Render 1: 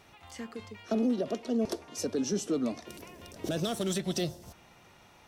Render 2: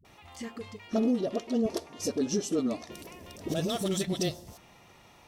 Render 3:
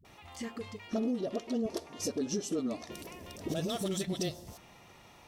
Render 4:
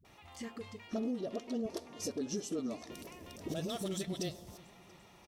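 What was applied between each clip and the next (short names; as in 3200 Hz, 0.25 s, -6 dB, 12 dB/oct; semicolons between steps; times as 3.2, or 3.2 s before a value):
notch 1500 Hz, Q 9.3; dispersion highs, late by 49 ms, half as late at 320 Hz; gain +1.5 dB
compressor 2:1, threshold -33 dBFS, peak gain reduction 6 dB
feedback echo 0.342 s, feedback 59%, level -21.5 dB; gain -4 dB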